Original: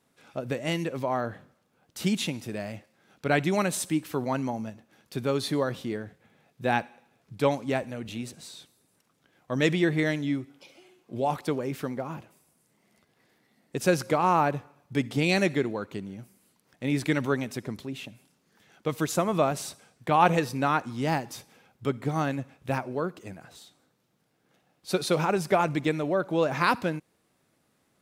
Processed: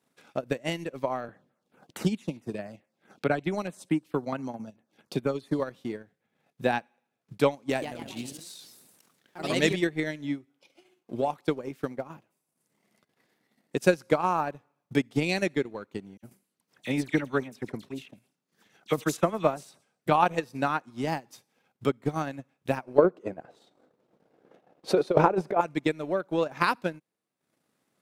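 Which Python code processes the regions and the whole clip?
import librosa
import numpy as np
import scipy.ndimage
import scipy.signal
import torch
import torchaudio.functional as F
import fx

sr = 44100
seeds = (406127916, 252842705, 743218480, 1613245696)

y = fx.chain(x, sr, fx.high_shelf(hz=9400.0, db=-10.5),
    fx.filter_lfo_notch(shape='saw_down', hz=4.6, low_hz=1000.0, high_hz=7400.0, q=1.0),
    fx.band_squash(depth_pct=40), at=(1.28, 5.6))
y = fx.chain(y, sr, fx.echo_pitch(ms=128, semitones=2, count=3, db_per_echo=-6.0),
    fx.high_shelf(hz=3600.0, db=7.0),
    fx.sustainer(db_per_s=35.0), at=(7.69, 9.87))
y = fx.chain(y, sr, fx.dispersion(late='lows', ms=56.0, hz=2500.0),
    fx.sustainer(db_per_s=120.0), at=(16.17, 20.08))
y = fx.chain(y, sr, fx.peak_eq(hz=490.0, db=12.0, octaves=2.0),
    fx.over_compress(threshold_db=-19.0, ratio=-1.0),
    fx.lowpass(hz=2600.0, slope=6), at=(22.98, 25.61))
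y = scipy.signal.sosfilt(scipy.signal.butter(2, 140.0, 'highpass', fs=sr, output='sos'), y)
y = fx.transient(y, sr, attack_db=9, sustain_db=-11)
y = F.gain(torch.from_numpy(y), -5.0).numpy()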